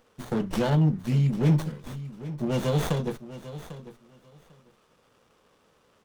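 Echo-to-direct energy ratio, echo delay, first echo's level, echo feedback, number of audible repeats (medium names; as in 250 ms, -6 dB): -14.5 dB, 797 ms, -14.5 dB, 17%, 2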